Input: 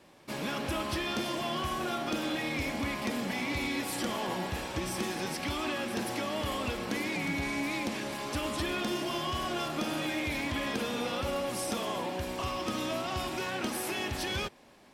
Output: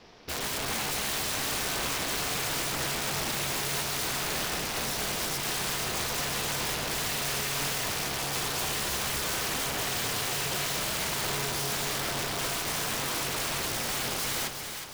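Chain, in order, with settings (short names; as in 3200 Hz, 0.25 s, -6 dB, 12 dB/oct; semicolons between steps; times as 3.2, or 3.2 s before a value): resonant high shelf 6900 Hz -9.5 dB, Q 3; added harmonics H 4 -20 dB, 5 -28 dB, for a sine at -18.5 dBFS; ring modulator 140 Hz; wrapped overs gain 31.5 dB; split-band echo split 740 Hz, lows 0.25 s, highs 0.364 s, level -7 dB; gain +5.5 dB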